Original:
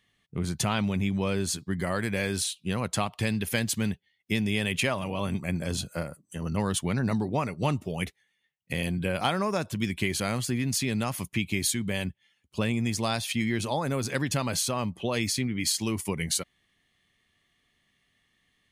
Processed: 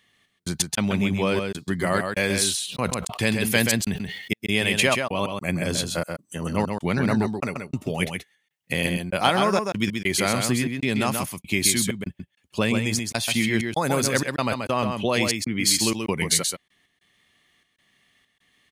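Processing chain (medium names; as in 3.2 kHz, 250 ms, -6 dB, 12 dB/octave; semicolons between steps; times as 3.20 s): 13.62–14.09 s: treble shelf 5 kHz +7 dB; trance gate "xx.x.xxxx.xxx.x" 97 bpm -60 dB; bass shelf 130 Hz -10.5 dB; delay 131 ms -5.5 dB; 2.50–4.33 s: decay stretcher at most 52 dB/s; trim +7 dB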